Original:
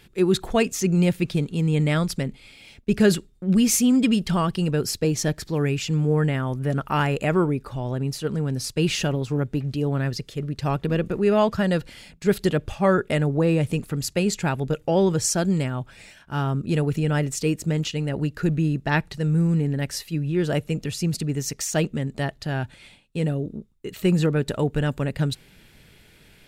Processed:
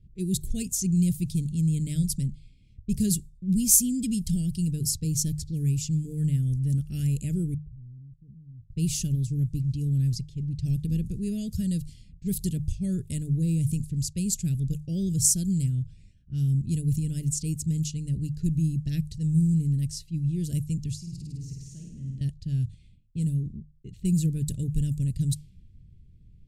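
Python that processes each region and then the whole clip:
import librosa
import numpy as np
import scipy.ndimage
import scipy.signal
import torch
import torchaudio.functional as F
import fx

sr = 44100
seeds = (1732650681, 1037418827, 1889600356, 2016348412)

y = fx.chain(x, sr, fx.gaussian_blur(sigma=23.0),
    fx.level_steps(step_db=23), at=(7.54, 8.72))
y = fx.chain(y, sr, fx.level_steps(step_db=18),
    fx.room_flutter(wall_m=9.0, rt60_s=1.1), at=(20.96, 22.21))
y = fx.env_lowpass(y, sr, base_hz=1200.0, full_db=-19.5)
y = scipy.signal.sosfilt(scipy.signal.cheby1(2, 1.0, [100.0, 8800.0], 'bandstop', fs=sr, output='sos'), y)
y = fx.hum_notches(y, sr, base_hz=50, count=3)
y = y * librosa.db_to_amplitude(7.0)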